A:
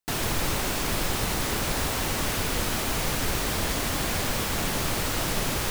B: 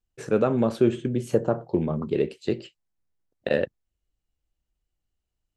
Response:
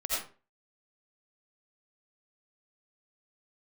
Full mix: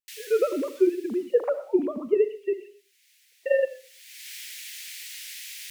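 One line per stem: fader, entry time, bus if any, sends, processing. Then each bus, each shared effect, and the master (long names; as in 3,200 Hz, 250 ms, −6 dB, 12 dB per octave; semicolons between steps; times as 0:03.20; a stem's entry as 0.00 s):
0:01.18 −8 dB → 0:01.88 −16.5 dB → 0:02.75 −16.5 dB → 0:03.10 −8 dB, 0.00 s, no send, Butterworth high-pass 1,900 Hz 48 dB per octave; automatic ducking −22 dB, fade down 1.40 s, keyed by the second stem
−1.0 dB, 0.00 s, send −18 dB, three sine waves on the formant tracks; speech leveller 0.5 s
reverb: on, RT60 0.35 s, pre-delay 45 ms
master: tape wow and flutter 29 cents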